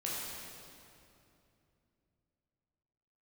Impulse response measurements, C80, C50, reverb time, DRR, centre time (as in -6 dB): -0.5 dB, -2.5 dB, 2.7 s, -6.5 dB, 154 ms